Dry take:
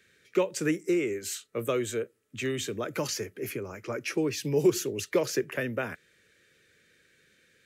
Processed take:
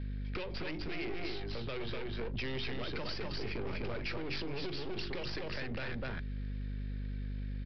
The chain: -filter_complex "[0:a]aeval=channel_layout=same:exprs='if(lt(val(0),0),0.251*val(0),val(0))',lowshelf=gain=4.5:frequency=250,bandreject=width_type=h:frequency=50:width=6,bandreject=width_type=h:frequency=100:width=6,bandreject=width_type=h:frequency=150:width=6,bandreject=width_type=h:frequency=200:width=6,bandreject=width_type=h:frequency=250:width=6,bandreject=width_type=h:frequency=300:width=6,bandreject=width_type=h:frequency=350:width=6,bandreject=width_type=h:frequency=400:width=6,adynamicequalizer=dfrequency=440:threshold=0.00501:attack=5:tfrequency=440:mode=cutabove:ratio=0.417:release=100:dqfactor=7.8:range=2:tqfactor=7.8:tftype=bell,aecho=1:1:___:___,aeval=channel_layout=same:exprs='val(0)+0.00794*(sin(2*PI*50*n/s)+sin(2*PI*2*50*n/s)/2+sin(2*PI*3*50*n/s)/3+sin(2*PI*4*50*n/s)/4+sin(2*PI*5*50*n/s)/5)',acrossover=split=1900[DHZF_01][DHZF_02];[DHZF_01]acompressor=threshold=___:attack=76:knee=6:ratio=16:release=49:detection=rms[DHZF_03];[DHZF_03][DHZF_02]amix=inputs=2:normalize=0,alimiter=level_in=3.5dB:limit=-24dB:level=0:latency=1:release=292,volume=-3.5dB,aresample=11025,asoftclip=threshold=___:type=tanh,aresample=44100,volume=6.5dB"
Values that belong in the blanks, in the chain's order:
249, 0.631, -38dB, -38dB